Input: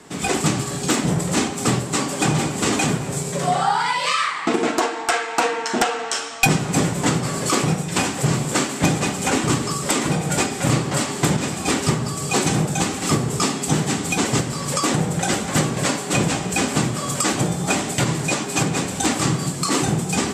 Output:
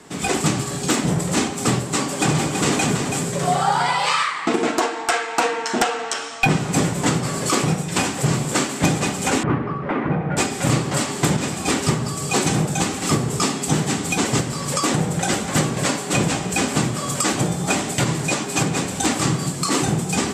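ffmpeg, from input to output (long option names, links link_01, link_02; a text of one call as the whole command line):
ffmpeg -i in.wav -filter_complex "[0:a]asettb=1/sr,asplit=3[link_01][link_02][link_03];[link_01]atrim=end=1.964[link_04];[link_02]atrim=start=1.96:end=4.23,asetpts=PTS-STARTPTS,afade=type=in:duration=0.004:curve=qsin,afade=type=out:start_time=2.266:duration=0.004:curve=qsin,aecho=1:1:328:0.473,atrim=end_sample=100107[link_05];[link_03]atrim=start=4.226[link_06];[link_04][link_05]acrossfade=duration=0.004:curve1=hsin:curve2=qsin[link_07];[link_07][link_06]acrossfade=duration=0.004:curve1=qsin:curve2=hsin,asettb=1/sr,asplit=3[link_08][link_09][link_10];[link_08]atrim=end=6.134[link_11];[link_09]atrim=start=6.13:end=6.65,asetpts=PTS-STARTPTS,afade=type=in:duration=0.004:curve=qsin,afade=type=out:start_time=0.516:duration=0.004:curve=qsin,acrossover=split=3700[link_12][link_13];[link_13]acompressor=threshold=-32dB:ratio=4:attack=1:release=60[link_14];[link_12][link_14]amix=inputs=2:normalize=0[link_15];[link_10]atrim=start=6.646[link_16];[link_11][link_15]acrossfade=duration=0.004:curve1=hsin:curve2=qsin[link_17];[link_17][link_16]acrossfade=duration=0.004:curve1=qsin:curve2=hsin,asettb=1/sr,asplit=3[link_18][link_19][link_20];[link_18]atrim=end=9.434[link_21];[link_19]atrim=start=9.43:end=10.37,asetpts=PTS-STARTPTS,afade=type=in:duration=0.004:curve=qsin,afade=type=out:start_time=0.936:duration=0.004:curve=qsin,lowpass=frequency=2000:width=0.5412,lowpass=frequency=2000:width=1.3066[link_22];[link_20]atrim=start=10.366[link_23];[link_21][link_22]acrossfade=duration=0.004:curve1=hsin:curve2=qsin[link_24];[link_24][link_23]acrossfade=duration=0.004:curve1=qsin:curve2=hsin" out.wav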